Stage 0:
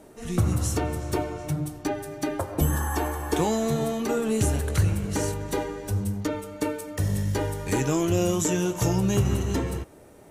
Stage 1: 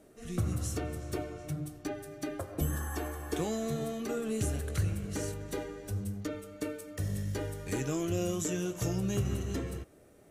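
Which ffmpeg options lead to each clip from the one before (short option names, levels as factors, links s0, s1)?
-af "equalizer=f=910:w=6.3:g=-12,volume=0.376"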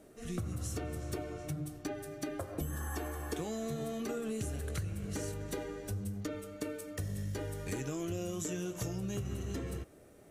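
-af "acompressor=threshold=0.0178:ratio=6,volume=1.12"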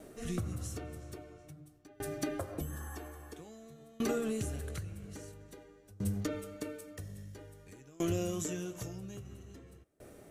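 -af "aeval=exprs='val(0)*pow(10,-26*if(lt(mod(0.5*n/s,1),2*abs(0.5)/1000),1-mod(0.5*n/s,1)/(2*abs(0.5)/1000),(mod(0.5*n/s,1)-2*abs(0.5)/1000)/(1-2*abs(0.5)/1000))/20)':c=same,volume=2.11"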